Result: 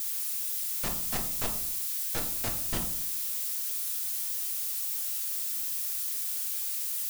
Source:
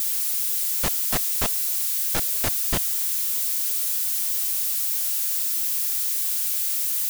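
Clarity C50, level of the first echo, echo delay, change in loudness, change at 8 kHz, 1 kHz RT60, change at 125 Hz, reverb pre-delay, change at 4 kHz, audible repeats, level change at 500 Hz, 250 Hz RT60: 9.0 dB, no echo audible, no echo audible, −8.0 dB, −8.0 dB, 0.55 s, −5.5 dB, 6 ms, −8.0 dB, no echo audible, −6.5 dB, 0.85 s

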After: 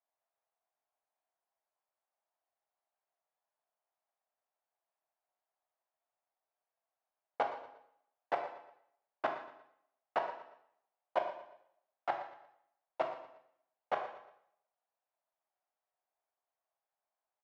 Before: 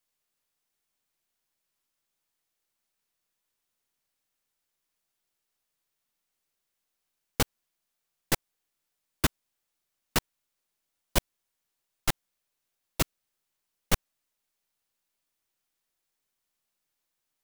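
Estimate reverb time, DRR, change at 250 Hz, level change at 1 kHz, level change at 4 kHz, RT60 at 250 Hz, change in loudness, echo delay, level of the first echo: 0.75 s, 3.0 dB, −17.5 dB, +2.0 dB, −20.0 dB, 0.75 s, −8.0 dB, 117 ms, −14.0 dB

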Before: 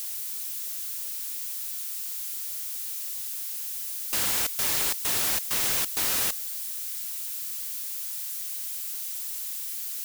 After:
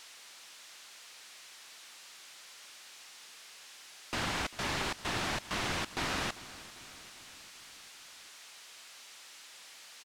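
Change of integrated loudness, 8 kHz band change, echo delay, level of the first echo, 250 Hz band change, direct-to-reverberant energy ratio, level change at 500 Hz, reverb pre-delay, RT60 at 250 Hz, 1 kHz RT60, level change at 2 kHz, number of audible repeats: −12.0 dB, −16.0 dB, 396 ms, −18.0 dB, +3.0 dB, no reverb audible, 0.0 dB, no reverb audible, no reverb audible, no reverb audible, −1.0 dB, 4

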